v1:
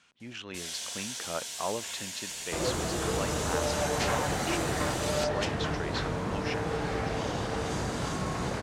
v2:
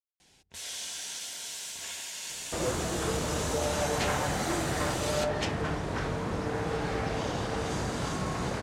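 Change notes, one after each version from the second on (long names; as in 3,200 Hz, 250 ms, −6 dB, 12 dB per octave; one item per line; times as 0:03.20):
speech: muted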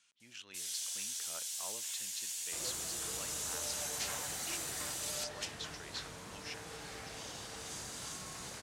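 speech: unmuted
master: add first-order pre-emphasis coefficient 0.9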